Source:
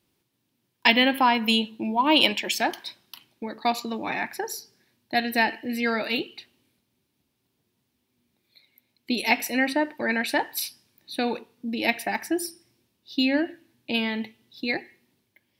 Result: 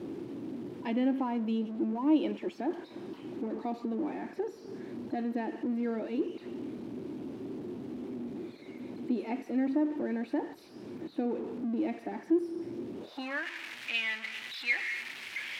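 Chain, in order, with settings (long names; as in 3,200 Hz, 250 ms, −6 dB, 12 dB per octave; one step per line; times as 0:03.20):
converter with a step at zero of −22.5 dBFS
band-pass filter sweep 320 Hz → 2,200 Hz, 0:12.94–0:13.49
level −3 dB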